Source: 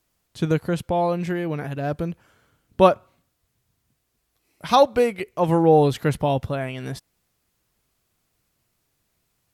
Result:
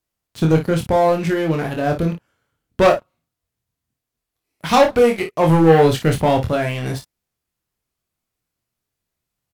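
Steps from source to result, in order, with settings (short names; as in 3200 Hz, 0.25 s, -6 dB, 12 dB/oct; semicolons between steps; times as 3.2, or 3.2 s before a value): sample leveller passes 3; on a send: early reflections 25 ms -4.5 dB, 55 ms -10 dB; on the sum: gain -5 dB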